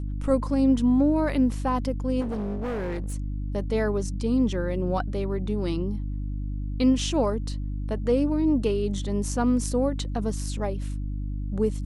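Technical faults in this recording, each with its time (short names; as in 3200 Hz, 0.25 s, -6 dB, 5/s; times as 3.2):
hum 50 Hz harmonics 6 -30 dBFS
2.2–3.14 clipped -26.5 dBFS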